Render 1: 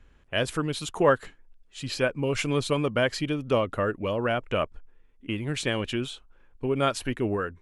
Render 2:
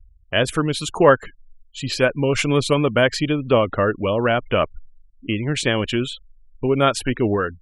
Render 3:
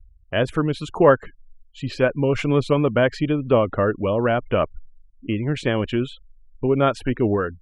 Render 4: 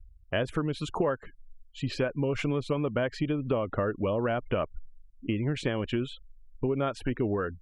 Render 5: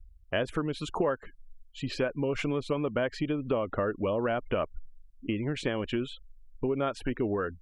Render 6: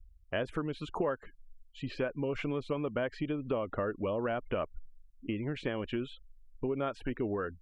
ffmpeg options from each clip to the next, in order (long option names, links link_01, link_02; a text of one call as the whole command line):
ffmpeg -i in.wav -af "afftfilt=real='re*gte(hypot(re,im),0.00708)':imag='im*gte(hypot(re,im),0.00708)':win_size=1024:overlap=0.75,volume=7.5dB" out.wav
ffmpeg -i in.wav -af "lowpass=frequency=1300:poles=1" out.wav
ffmpeg -i in.wav -af "acompressor=threshold=-23dB:ratio=6,volume=-2dB" out.wav
ffmpeg -i in.wav -af "equalizer=frequency=120:width=1.2:gain=-5" out.wav
ffmpeg -i in.wav -filter_complex "[0:a]acrossover=split=3700[link_01][link_02];[link_02]acompressor=threshold=-56dB:ratio=4:attack=1:release=60[link_03];[link_01][link_03]amix=inputs=2:normalize=0,volume=-4dB" out.wav